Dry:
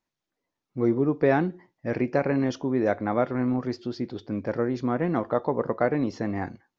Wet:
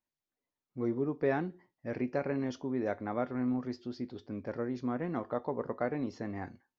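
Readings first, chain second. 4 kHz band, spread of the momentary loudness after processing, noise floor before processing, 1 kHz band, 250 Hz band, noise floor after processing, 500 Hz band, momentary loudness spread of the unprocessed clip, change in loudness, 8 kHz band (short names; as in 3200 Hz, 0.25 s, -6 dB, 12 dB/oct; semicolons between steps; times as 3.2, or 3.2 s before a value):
-9.0 dB, 10 LU, under -85 dBFS, -9.5 dB, -8.5 dB, under -85 dBFS, -9.0 dB, 9 LU, -9.0 dB, n/a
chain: resonator 83 Hz, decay 0.19 s, harmonics odd, mix 50%; gain -5 dB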